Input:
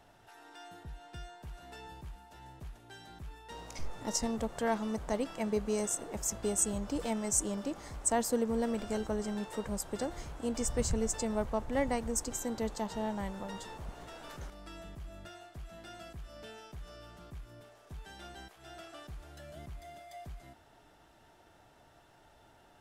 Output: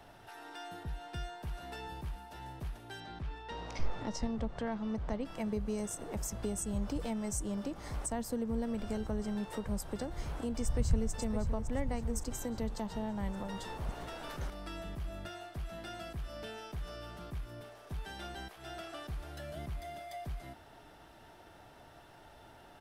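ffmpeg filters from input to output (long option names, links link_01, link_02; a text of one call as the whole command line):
ffmpeg -i in.wav -filter_complex "[0:a]asettb=1/sr,asplit=3[link_01][link_02][link_03];[link_01]atrim=end=3.004[link_04];[link_02]atrim=start=3:end=5.25,asetpts=PTS-STARTPTS,afade=type=in:duration=0.004:curve=qsin,afade=type=out:start_time=2.246:duration=0.004:curve=qsin,lowpass=4800[link_05];[link_03]atrim=start=5.246[link_06];[link_04][link_05]acrossfade=duration=0.004:curve1=hsin:curve2=qsin[link_07];[link_07][link_06]acrossfade=duration=0.004:curve1=qsin:curve2=hsin,asplit=2[link_08][link_09];[link_09]afade=type=in:start_time=10.62:duration=0.01,afade=type=out:start_time=11.11:duration=0.01,aecho=0:1:560|1120|1680|2240|2800|3360:0.354813|0.177407|0.0887033|0.0443517|0.0221758|0.0110879[link_10];[link_08][link_10]amix=inputs=2:normalize=0,equalizer=frequency=7100:width_type=o:width=0.44:gain=-6,acrossover=split=170[link_11][link_12];[link_12]acompressor=threshold=-46dB:ratio=3[link_13];[link_11][link_13]amix=inputs=2:normalize=0,volume=5.5dB" out.wav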